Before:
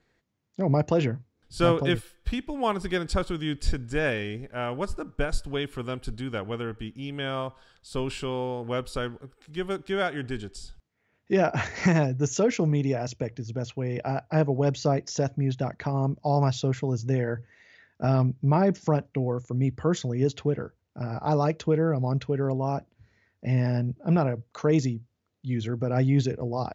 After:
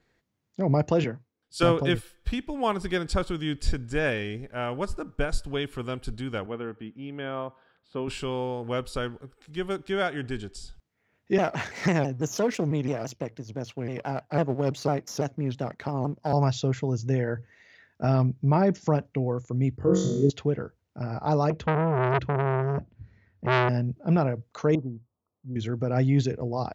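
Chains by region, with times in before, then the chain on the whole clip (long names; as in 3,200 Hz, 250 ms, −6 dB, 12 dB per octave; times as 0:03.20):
0:01.04–0:01.63: high-pass filter 320 Hz 6 dB per octave + multiband upward and downward expander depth 70%
0:06.46–0:08.08: high-pass filter 170 Hz + high-frequency loss of the air 450 metres
0:11.38–0:16.33: gain on one half-wave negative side −7 dB + high-pass filter 120 Hz + pitch modulation by a square or saw wave saw down 6 Hz, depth 160 cents
0:19.77–0:20.30: spectral envelope exaggerated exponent 1.5 + parametric band 2,100 Hz −10 dB 2.1 octaves + flutter between parallel walls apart 3.7 metres, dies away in 0.69 s
0:21.50–0:23.69: bass and treble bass +12 dB, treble −9 dB + saturating transformer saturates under 1,500 Hz
0:24.75–0:25.56: Butterworth low-pass 1,200 Hz 72 dB per octave + tilt shelving filter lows −7.5 dB, about 890 Hz
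whole clip: no processing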